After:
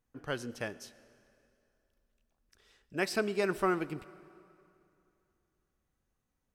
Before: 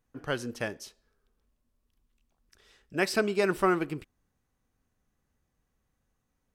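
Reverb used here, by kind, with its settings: plate-style reverb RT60 2.7 s, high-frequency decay 0.85×, pre-delay 80 ms, DRR 19 dB; trim -4.5 dB

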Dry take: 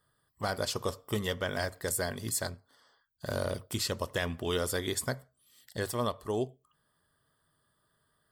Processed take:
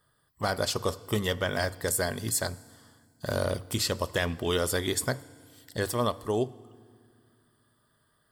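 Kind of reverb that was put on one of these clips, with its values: FDN reverb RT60 2 s, low-frequency decay 1.5×, high-frequency decay 0.9×, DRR 19 dB; trim +4 dB

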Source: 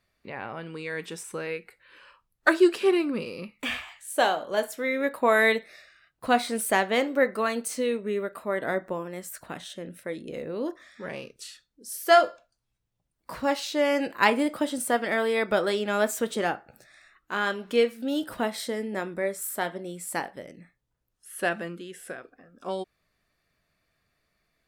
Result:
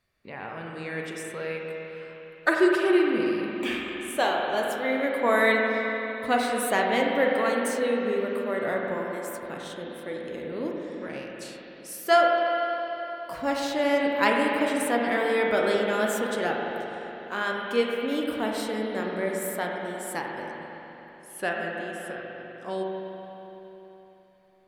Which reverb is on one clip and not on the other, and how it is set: spring tank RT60 3.6 s, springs 42/50 ms, chirp 75 ms, DRR -1 dB; trim -2.5 dB

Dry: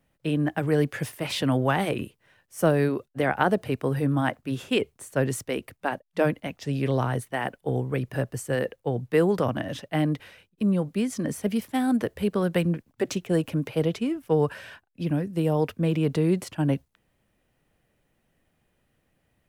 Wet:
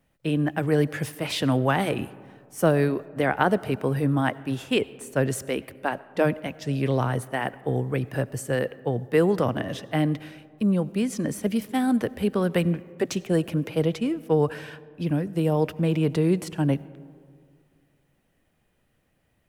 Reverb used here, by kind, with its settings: algorithmic reverb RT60 2.1 s, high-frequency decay 0.35×, pre-delay 50 ms, DRR 19 dB; trim +1 dB

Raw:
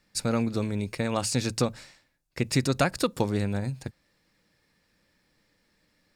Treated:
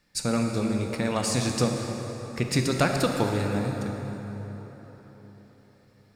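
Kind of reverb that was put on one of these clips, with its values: plate-style reverb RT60 4.4 s, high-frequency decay 0.6×, DRR 2 dB

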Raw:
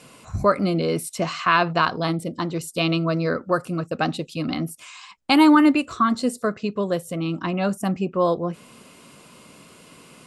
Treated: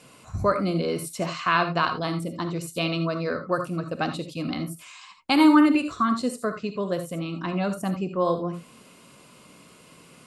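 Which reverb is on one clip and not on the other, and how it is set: gated-style reverb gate 100 ms rising, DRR 8 dB; trim -4 dB

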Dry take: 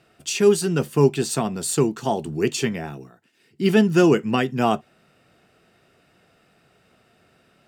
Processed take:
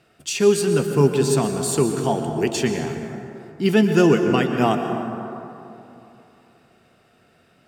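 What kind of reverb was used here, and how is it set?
plate-style reverb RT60 3 s, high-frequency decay 0.4×, pre-delay 105 ms, DRR 5 dB

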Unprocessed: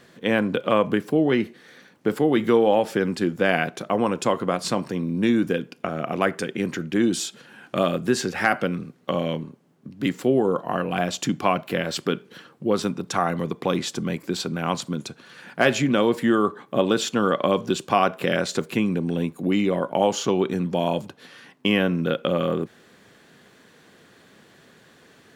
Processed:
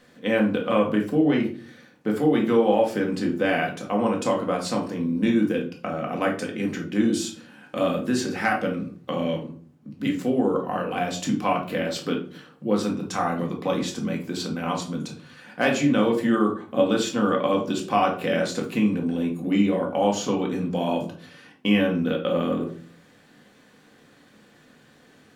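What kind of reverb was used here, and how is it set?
simulated room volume 350 m³, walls furnished, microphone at 2 m; trim -5.5 dB

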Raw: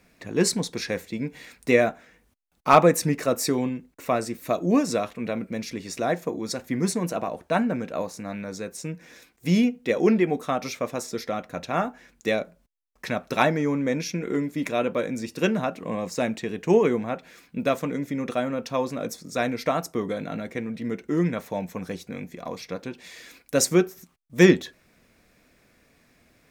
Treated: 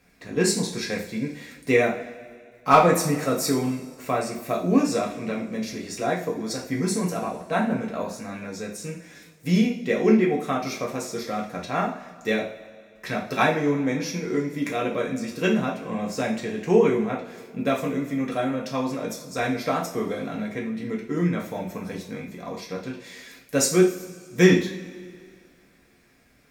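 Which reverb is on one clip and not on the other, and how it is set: two-slope reverb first 0.43 s, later 2.2 s, from -18 dB, DRR -2.5 dB; trim -3.5 dB

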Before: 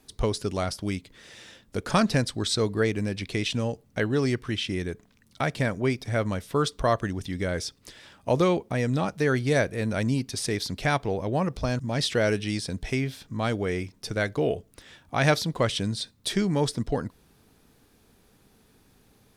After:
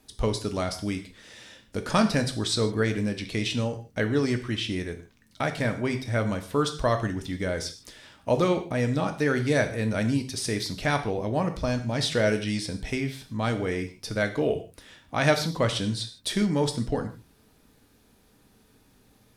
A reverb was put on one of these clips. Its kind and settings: gated-style reverb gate 180 ms falling, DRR 6 dB; trim -1 dB

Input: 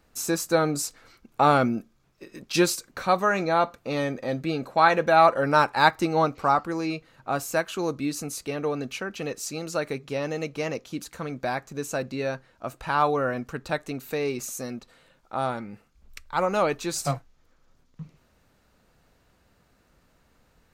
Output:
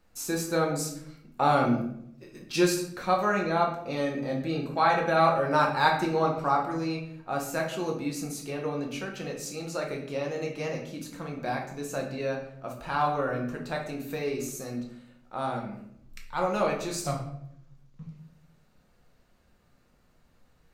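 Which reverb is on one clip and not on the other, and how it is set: simulated room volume 150 m³, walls mixed, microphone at 0.94 m; trim -6.5 dB

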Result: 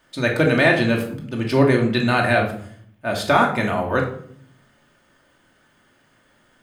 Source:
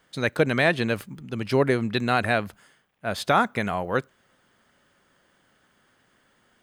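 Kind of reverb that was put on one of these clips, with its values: simulated room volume 900 m³, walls furnished, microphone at 2.6 m; trim +1.5 dB

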